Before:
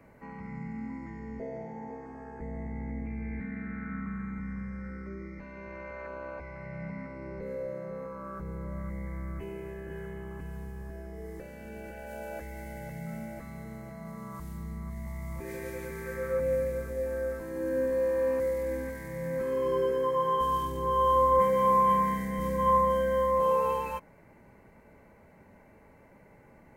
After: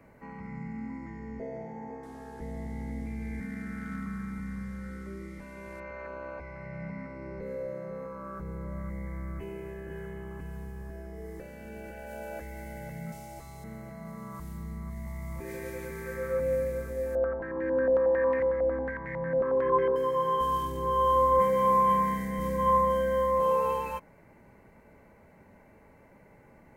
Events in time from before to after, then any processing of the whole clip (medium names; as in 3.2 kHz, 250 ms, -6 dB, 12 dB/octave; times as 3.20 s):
2.03–5.80 s: one-bit delta coder 64 kbps, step -54.5 dBFS
13.12–13.64 s: FFT filter 130 Hz 0 dB, 200 Hz -15 dB, 380 Hz +1 dB, 550 Hz -7 dB, 810 Hz +4 dB, 1.7 kHz -9 dB, 3.1 kHz +4 dB, 5.5 kHz +8 dB, 8.1 kHz +7 dB, 13 kHz +3 dB
17.15–19.96 s: step-sequenced low-pass 11 Hz 690–2000 Hz